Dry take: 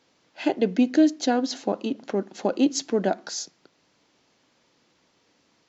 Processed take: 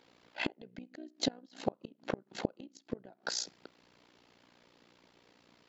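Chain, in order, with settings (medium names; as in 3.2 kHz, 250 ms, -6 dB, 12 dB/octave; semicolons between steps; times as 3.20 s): AM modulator 60 Hz, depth 75%; peaking EQ 6.2 kHz -8.5 dB 0.58 oct; inverted gate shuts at -23 dBFS, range -32 dB; trim +5 dB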